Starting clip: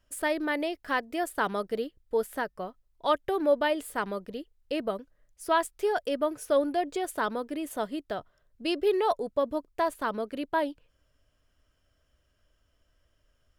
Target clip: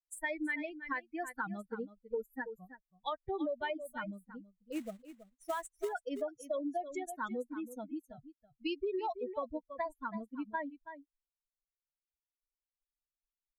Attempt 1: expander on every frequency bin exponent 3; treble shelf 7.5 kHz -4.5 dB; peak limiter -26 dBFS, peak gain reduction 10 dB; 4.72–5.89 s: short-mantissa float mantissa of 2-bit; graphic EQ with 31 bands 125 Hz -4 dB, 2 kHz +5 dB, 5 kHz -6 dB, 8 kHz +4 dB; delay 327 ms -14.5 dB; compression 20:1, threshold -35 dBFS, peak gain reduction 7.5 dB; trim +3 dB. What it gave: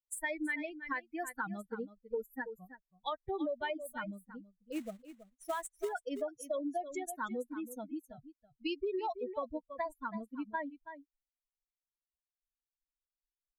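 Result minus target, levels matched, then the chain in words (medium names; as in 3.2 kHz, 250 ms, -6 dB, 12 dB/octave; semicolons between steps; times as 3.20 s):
8 kHz band +4.5 dB
expander on every frequency bin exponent 3; treble shelf 7.5 kHz -13 dB; peak limiter -26 dBFS, peak gain reduction 9.5 dB; 4.72–5.89 s: short-mantissa float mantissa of 2-bit; graphic EQ with 31 bands 125 Hz -4 dB, 2 kHz +5 dB, 5 kHz -6 dB, 8 kHz +4 dB; delay 327 ms -14.5 dB; compression 20:1, threshold -35 dBFS, peak gain reduction 7.5 dB; trim +3 dB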